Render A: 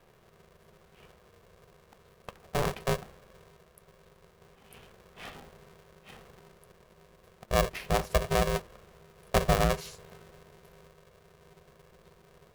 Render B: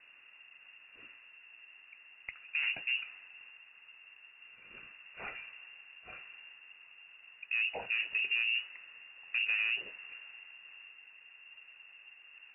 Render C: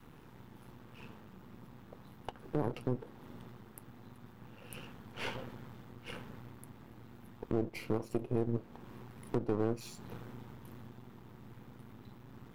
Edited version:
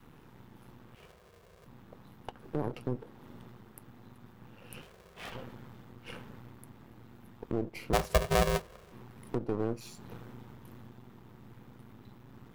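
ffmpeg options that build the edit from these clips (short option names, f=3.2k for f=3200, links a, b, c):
-filter_complex "[0:a]asplit=3[a][b][c];[2:a]asplit=4[d][e][f][g];[d]atrim=end=0.952[h];[a]atrim=start=0.948:end=1.662[i];[e]atrim=start=1.658:end=4.822[j];[b]atrim=start=4.818:end=5.322[k];[f]atrim=start=5.318:end=7.932[l];[c]atrim=start=7.928:end=8.922[m];[g]atrim=start=8.918[n];[h][i]acrossfade=d=0.004:c1=hsin:c2=hsin[o];[o][j]acrossfade=d=0.004:c1=hsin:c2=hsin[p];[p][k]acrossfade=d=0.004:c1=hsin:c2=hsin[q];[q][l]acrossfade=d=0.004:c1=hsin:c2=hsin[r];[r][m]acrossfade=d=0.004:c1=hsin:c2=hsin[s];[s][n]acrossfade=d=0.004:c1=hsin:c2=hsin"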